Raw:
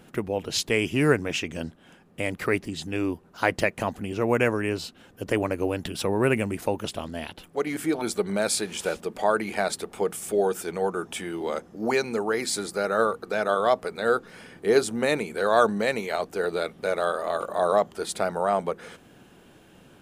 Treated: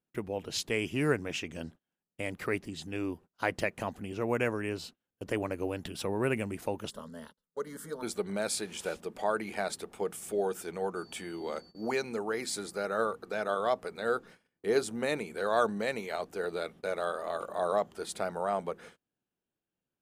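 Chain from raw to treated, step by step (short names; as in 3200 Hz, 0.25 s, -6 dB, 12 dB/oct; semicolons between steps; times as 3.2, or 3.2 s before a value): 6.9–8.03 fixed phaser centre 490 Hz, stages 8; 10.95–11.9 whine 4500 Hz -50 dBFS; gate -41 dBFS, range -31 dB; gain -7.5 dB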